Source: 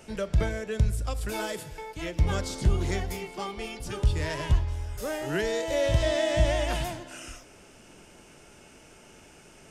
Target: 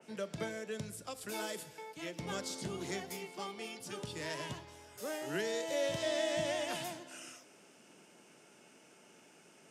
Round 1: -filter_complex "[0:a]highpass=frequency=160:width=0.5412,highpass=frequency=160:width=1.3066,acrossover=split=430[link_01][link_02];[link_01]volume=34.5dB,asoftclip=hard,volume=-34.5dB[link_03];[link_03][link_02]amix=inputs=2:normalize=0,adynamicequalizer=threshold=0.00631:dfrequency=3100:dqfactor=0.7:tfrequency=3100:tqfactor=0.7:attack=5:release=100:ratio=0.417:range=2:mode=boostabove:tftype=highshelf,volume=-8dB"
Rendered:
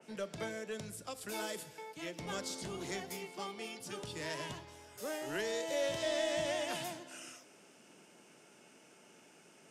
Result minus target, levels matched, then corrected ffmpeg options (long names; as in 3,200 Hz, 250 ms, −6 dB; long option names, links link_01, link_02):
gain into a clipping stage and back: distortion +18 dB
-filter_complex "[0:a]highpass=frequency=160:width=0.5412,highpass=frequency=160:width=1.3066,acrossover=split=430[link_01][link_02];[link_01]volume=25dB,asoftclip=hard,volume=-25dB[link_03];[link_03][link_02]amix=inputs=2:normalize=0,adynamicequalizer=threshold=0.00631:dfrequency=3100:dqfactor=0.7:tfrequency=3100:tqfactor=0.7:attack=5:release=100:ratio=0.417:range=2:mode=boostabove:tftype=highshelf,volume=-8dB"